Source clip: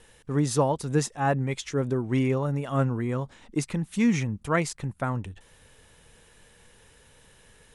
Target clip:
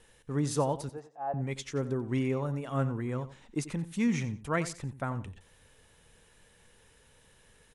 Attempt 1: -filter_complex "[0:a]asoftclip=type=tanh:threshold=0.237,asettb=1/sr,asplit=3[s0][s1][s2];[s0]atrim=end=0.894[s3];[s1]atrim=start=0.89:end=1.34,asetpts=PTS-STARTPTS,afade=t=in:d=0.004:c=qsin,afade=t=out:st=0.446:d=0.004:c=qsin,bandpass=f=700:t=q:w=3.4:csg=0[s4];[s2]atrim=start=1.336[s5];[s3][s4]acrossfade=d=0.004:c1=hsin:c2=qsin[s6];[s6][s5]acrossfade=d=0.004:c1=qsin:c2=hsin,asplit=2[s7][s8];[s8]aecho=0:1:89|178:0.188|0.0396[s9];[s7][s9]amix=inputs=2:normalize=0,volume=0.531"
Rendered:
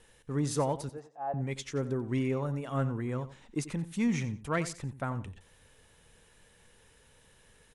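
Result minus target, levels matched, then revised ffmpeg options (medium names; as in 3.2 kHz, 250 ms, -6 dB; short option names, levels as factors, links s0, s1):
saturation: distortion +21 dB
-filter_complex "[0:a]asoftclip=type=tanh:threshold=0.891,asettb=1/sr,asplit=3[s0][s1][s2];[s0]atrim=end=0.894[s3];[s1]atrim=start=0.89:end=1.34,asetpts=PTS-STARTPTS,afade=t=in:d=0.004:c=qsin,afade=t=out:st=0.446:d=0.004:c=qsin,bandpass=f=700:t=q:w=3.4:csg=0[s4];[s2]atrim=start=1.336[s5];[s3][s4]acrossfade=d=0.004:c1=hsin:c2=qsin[s6];[s6][s5]acrossfade=d=0.004:c1=qsin:c2=hsin,asplit=2[s7][s8];[s8]aecho=0:1:89|178:0.188|0.0396[s9];[s7][s9]amix=inputs=2:normalize=0,volume=0.531"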